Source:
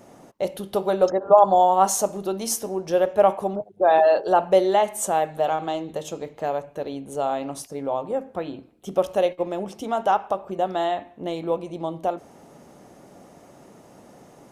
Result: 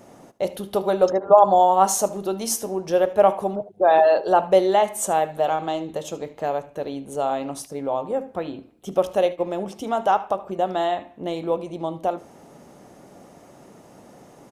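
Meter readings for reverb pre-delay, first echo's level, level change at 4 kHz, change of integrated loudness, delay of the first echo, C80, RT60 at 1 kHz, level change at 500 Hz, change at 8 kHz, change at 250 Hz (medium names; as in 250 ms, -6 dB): no reverb, -18.5 dB, +1.0 dB, +1.0 dB, 75 ms, no reverb, no reverb, +1.0 dB, +1.0 dB, +1.0 dB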